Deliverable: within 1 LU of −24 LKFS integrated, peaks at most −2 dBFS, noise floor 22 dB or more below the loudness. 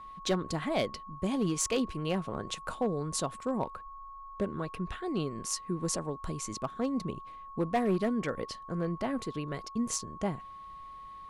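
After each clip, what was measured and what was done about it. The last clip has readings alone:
share of clipped samples 0.5%; peaks flattened at −22.0 dBFS; interfering tone 1,100 Hz; level of the tone −44 dBFS; integrated loudness −33.5 LKFS; sample peak −22.0 dBFS; target loudness −24.0 LKFS
→ clipped peaks rebuilt −22 dBFS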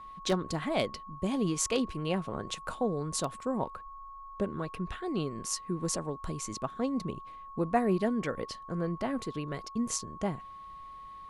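share of clipped samples 0.0%; interfering tone 1,100 Hz; level of the tone −44 dBFS
→ notch filter 1,100 Hz, Q 30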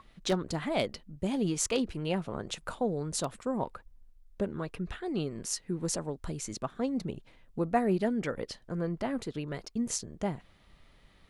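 interfering tone none found; integrated loudness −33.5 LKFS; sample peak −14.0 dBFS; target loudness −24.0 LKFS
→ level +9.5 dB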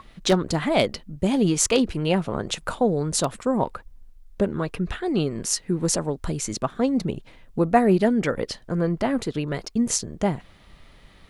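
integrated loudness −24.0 LKFS; sample peak −4.5 dBFS; background noise floor −52 dBFS

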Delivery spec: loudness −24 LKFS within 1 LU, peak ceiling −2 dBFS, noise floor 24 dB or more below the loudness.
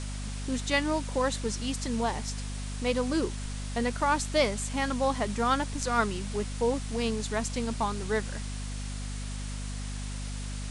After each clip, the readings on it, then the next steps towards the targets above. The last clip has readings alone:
mains hum 50 Hz; hum harmonics up to 250 Hz; level of the hum −33 dBFS; background noise floor −36 dBFS; target noise floor −55 dBFS; integrated loudness −30.5 LKFS; sample peak −11.5 dBFS; target loudness −24.0 LKFS
→ mains-hum notches 50/100/150/200/250 Hz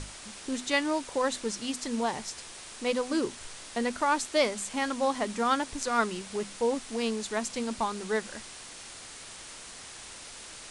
mains hum none found; background noise floor −46 dBFS; target noise floor −55 dBFS
→ noise reduction from a noise print 9 dB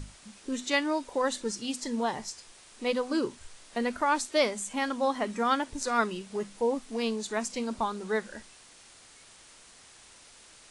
background noise floor −55 dBFS; integrated loudness −30.5 LKFS; sample peak −11.5 dBFS; target loudness −24.0 LKFS
→ level +6.5 dB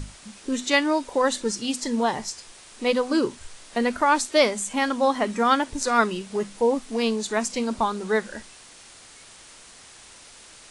integrated loudness −24.0 LKFS; sample peak −5.0 dBFS; background noise floor −48 dBFS

